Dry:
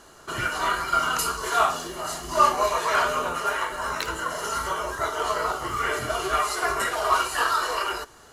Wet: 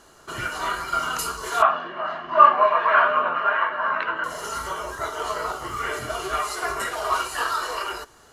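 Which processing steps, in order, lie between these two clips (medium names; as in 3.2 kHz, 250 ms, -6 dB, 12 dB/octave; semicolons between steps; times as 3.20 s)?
1.62–4.24 s: cabinet simulation 200–2900 Hz, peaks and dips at 200 Hz +6 dB, 410 Hz -5 dB, 640 Hz +7 dB, 1.1 kHz +9 dB, 1.6 kHz +9 dB, 2.7 kHz +4 dB; trim -2 dB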